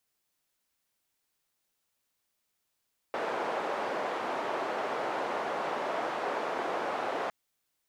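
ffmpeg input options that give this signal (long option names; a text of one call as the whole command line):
ffmpeg -f lavfi -i "anoisesrc=color=white:duration=4.16:sample_rate=44100:seed=1,highpass=frequency=500,lowpass=frequency=760,volume=-10.3dB" out.wav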